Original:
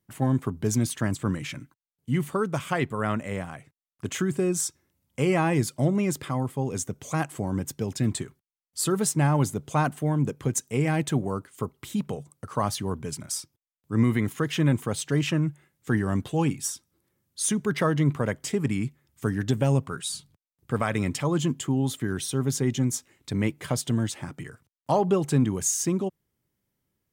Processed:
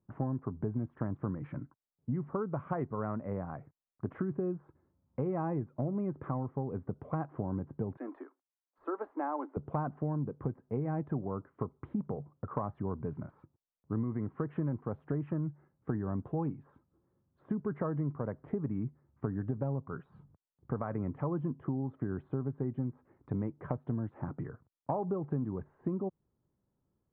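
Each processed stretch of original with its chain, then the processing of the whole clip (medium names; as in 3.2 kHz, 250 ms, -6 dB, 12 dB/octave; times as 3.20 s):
7.97–9.57 s: steep high-pass 280 Hz 72 dB/octave + peaking EQ 400 Hz -10 dB
whole clip: de-esser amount 70%; inverse Chebyshev low-pass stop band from 5.3 kHz, stop band 70 dB; compression 6:1, threshold -31 dBFS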